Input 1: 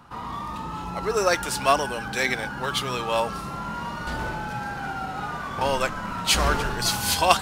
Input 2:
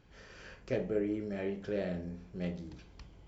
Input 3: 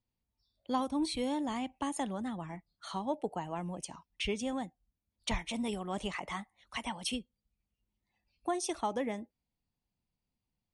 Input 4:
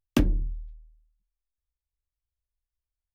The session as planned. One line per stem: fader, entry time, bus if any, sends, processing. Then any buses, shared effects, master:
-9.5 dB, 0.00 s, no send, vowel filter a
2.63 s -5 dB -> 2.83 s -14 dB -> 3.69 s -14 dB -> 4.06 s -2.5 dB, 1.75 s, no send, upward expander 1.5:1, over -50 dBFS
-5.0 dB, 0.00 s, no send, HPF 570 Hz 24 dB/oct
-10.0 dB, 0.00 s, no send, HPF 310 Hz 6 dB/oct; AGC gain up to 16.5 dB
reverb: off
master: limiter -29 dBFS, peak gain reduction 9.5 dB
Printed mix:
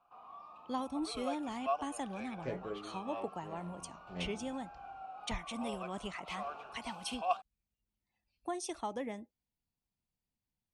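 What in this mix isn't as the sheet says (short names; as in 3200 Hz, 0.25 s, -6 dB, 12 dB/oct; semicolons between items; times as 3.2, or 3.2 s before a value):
stem 3: missing HPF 570 Hz 24 dB/oct; stem 4: muted; master: missing limiter -29 dBFS, peak gain reduction 9.5 dB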